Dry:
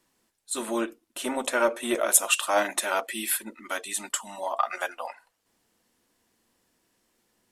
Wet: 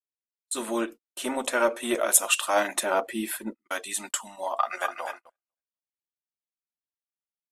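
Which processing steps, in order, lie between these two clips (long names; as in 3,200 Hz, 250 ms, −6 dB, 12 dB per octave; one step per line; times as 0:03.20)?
0:04.55–0:05.04: delay throw 250 ms, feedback 25%, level −7.5 dB
noise gate −39 dBFS, range −43 dB
0:02.83–0:03.63: tilt shelving filter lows +7.5 dB, about 1,200 Hz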